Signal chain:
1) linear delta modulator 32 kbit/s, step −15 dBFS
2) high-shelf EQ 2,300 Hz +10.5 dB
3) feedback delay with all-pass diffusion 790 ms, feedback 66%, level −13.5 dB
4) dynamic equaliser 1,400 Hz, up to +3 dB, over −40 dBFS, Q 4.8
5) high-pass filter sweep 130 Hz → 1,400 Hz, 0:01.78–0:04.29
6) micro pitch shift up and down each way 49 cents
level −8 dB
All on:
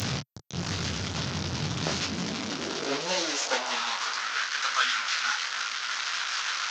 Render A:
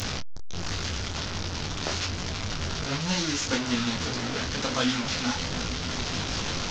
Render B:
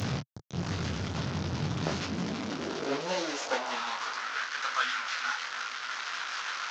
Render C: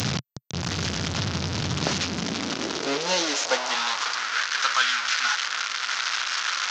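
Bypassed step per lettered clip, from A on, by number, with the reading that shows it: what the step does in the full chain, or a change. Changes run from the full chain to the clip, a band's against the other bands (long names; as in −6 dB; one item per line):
5, 250 Hz band +6.0 dB
2, 8 kHz band −8.0 dB
6, change in integrated loudness +4.0 LU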